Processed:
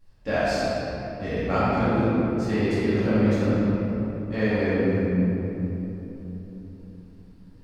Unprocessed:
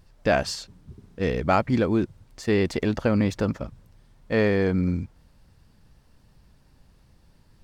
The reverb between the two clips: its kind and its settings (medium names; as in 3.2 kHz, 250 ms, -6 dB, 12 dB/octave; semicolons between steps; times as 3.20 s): simulated room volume 210 m³, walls hard, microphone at 2.3 m; trim -13.5 dB